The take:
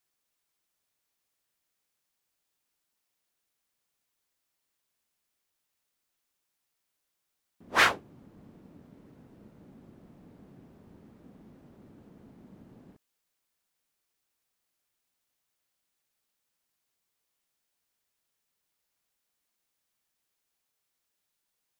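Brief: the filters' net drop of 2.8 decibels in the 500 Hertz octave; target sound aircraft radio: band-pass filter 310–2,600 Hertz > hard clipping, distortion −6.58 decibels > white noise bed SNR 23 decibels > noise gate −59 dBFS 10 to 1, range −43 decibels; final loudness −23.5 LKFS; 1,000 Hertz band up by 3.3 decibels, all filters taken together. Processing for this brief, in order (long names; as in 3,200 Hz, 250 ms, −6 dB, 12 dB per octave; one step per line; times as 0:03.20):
band-pass filter 310–2,600 Hz
parametric band 500 Hz −5 dB
parametric band 1,000 Hz +5.5 dB
hard clipping −23 dBFS
white noise bed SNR 23 dB
noise gate −59 dBFS 10 to 1, range −43 dB
level +6.5 dB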